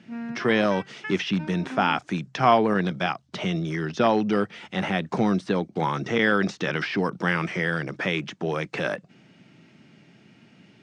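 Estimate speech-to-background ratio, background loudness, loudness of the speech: 13.5 dB, −38.5 LKFS, −25.0 LKFS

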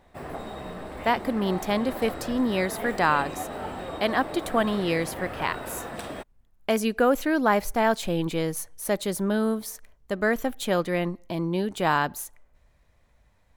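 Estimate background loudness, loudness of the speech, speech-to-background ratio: −36.0 LKFS, −26.5 LKFS, 9.5 dB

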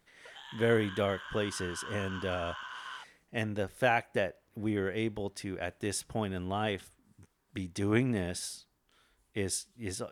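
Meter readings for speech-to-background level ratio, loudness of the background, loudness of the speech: 10.0 dB, −43.5 LKFS, −33.5 LKFS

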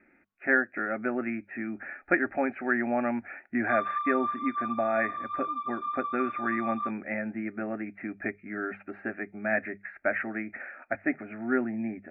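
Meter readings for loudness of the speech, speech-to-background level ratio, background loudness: −31.0 LKFS, 2.5 dB, −33.5 LKFS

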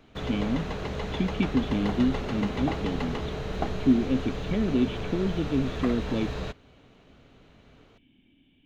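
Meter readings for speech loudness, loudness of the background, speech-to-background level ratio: −28.5 LKFS, −33.5 LKFS, 5.0 dB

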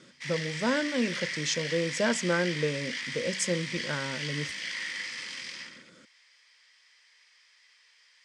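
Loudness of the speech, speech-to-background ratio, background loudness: −31.0 LKFS, 3.5 dB, −34.5 LKFS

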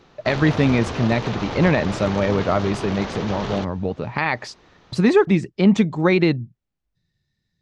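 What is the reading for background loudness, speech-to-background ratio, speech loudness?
−29.5 LKFS, 9.0 dB, −20.5 LKFS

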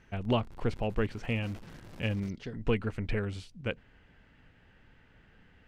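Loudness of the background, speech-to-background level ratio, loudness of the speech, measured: −52.5 LKFS, 18.5 dB, −34.0 LKFS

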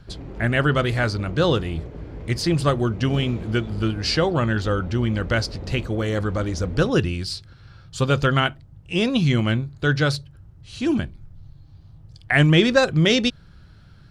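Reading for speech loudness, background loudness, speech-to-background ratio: −22.0 LKFS, −37.0 LKFS, 15.0 dB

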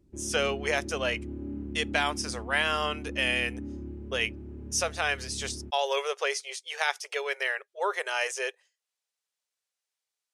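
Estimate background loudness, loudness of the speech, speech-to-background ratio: −40.0 LKFS, −29.5 LKFS, 10.5 dB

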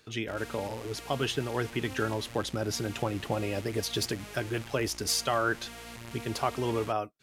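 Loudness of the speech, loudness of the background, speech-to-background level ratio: −32.0 LKFS, −44.5 LKFS, 12.5 dB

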